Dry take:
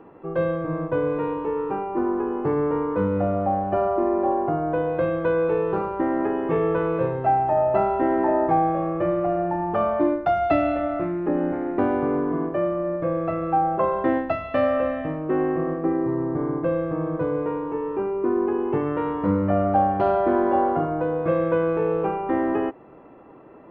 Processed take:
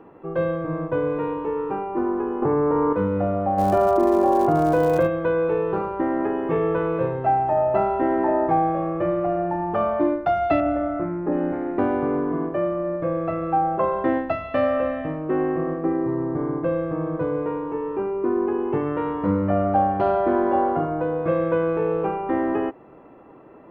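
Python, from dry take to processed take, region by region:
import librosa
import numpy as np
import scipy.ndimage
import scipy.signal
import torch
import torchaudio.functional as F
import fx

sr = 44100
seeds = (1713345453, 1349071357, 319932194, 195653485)

y = fx.chain(x, sr, fx.lowpass(hz=1300.0, slope=6),
    fx.peak_eq(hz=1000.0, db=4.5, octaves=1.6),
    fx.env_flatten(amount_pct=100), at=(2.42, 2.93))
y = fx.dmg_crackle(y, sr, seeds[0], per_s=230.0, level_db=-34.0, at=(3.57, 5.06), fade=0.02)
y = fx.env_flatten(y, sr, amount_pct=70, at=(3.57, 5.06), fade=0.02)
y = fx.chain(y, sr, fx.lowpass(hz=1600.0, slope=12),
    fx.room_flutter(wall_m=10.0, rt60_s=0.41), at=(10.6, 11.32))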